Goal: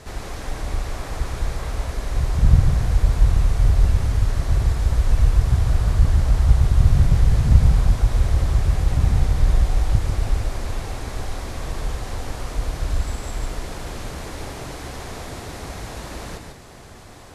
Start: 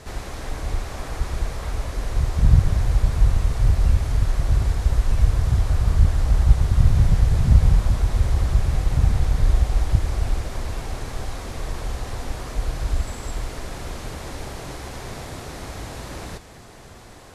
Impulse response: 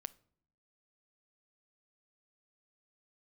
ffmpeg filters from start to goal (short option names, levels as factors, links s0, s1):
-filter_complex "[0:a]asplit=2[s0][s1];[1:a]atrim=start_sample=2205,adelay=146[s2];[s1][s2]afir=irnorm=-1:irlink=0,volume=0.841[s3];[s0][s3]amix=inputs=2:normalize=0"